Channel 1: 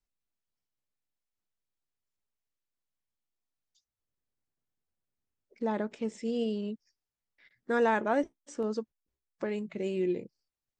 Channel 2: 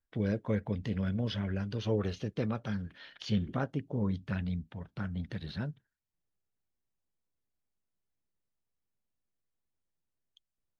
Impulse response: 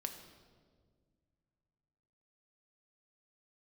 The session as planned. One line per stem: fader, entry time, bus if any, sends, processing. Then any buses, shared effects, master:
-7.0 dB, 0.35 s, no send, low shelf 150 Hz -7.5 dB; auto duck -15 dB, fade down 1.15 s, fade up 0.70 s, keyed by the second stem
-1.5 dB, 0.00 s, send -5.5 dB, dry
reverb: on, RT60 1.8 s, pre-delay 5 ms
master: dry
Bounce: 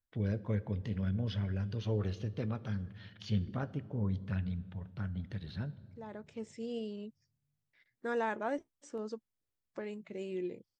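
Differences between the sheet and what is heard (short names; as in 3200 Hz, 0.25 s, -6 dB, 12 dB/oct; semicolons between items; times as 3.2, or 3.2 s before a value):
stem 2 -1.5 dB -> -8.5 dB; master: extra bell 100 Hz +7.5 dB 0.74 oct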